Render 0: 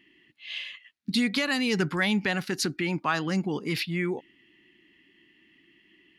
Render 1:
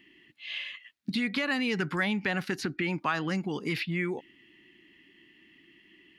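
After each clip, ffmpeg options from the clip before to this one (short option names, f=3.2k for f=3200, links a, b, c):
-filter_complex "[0:a]acrossover=split=1400|2900[a][b][c];[a]acompressor=threshold=-31dB:ratio=4[d];[b]acompressor=threshold=-32dB:ratio=4[e];[c]acompressor=threshold=-49dB:ratio=4[f];[d][e][f]amix=inputs=3:normalize=0,volume=2dB"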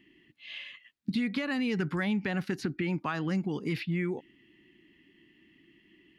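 -af "lowshelf=f=450:g=9,volume=-6dB"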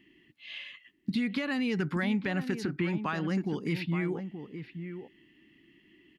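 -filter_complex "[0:a]asplit=2[a][b];[b]adelay=874.6,volume=-9dB,highshelf=f=4k:g=-19.7[c];[a][c]amix=inputs=2:normalize=0"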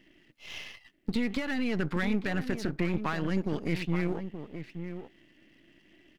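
-af "aeval=exprs='if(lt(val(0),0),0.251*val(0),val(0))':c=same,volume=3.5dB"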